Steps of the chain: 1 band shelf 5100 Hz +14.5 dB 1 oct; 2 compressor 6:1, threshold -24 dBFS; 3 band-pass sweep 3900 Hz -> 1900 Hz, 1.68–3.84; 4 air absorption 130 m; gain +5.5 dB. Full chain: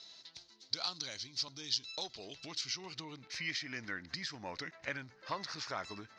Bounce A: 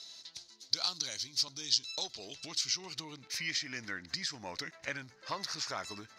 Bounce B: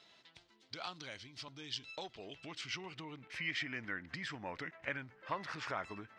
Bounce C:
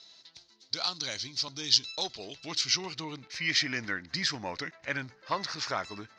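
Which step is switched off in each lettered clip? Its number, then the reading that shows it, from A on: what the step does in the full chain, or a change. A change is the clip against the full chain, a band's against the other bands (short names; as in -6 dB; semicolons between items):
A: 4, 8 kHz band +8.0 dB; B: 1, 8 kHz band -11.0 dB; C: 2, crest factor change +2.0 dB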